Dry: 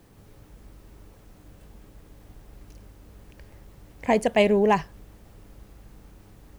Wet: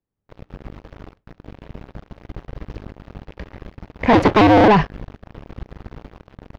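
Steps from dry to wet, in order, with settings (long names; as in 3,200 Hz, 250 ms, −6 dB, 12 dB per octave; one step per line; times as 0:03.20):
0:04.13–0:04.68: sub-harmonics by changed cycles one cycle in 2, inverted
noise gate with hold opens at −41 dBFS
leveller curve on the samples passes 5
high-frequency loss of the air 260 metres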